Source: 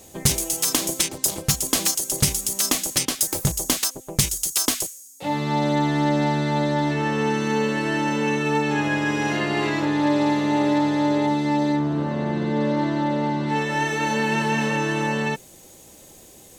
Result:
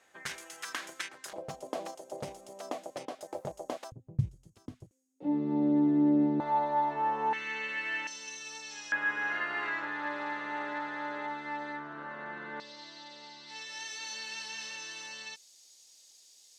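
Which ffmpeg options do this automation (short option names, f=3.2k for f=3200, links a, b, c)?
-af "asetnsamples=n=441:p=0,asendcmd='1.33 bandpass f 640;3.92 bandpass f 110;4.91 bandpass f 310;6.4 bandpass f 880;7.33 bandpass f 2200;8.07 bandpass f 5500;8.92 bandpass f 1500;12.6 bandpass f 4900',bandpass=f=1.6k:t=q:w=3.3:csg=0"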